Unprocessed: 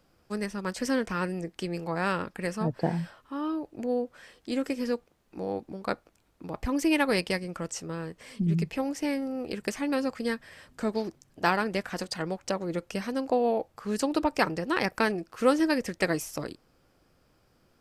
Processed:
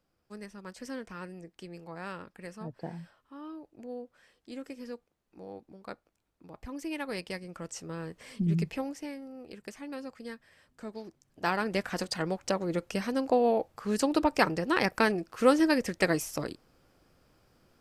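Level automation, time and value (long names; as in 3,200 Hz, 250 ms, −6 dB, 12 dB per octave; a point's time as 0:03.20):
0:06.95 −12 dB
0:08.17 −1.5 dB
0:08.69 −1.5 dB
0:09.15 −12 dB
0:11.01 −12 dB
0:11.81 +0.5 dB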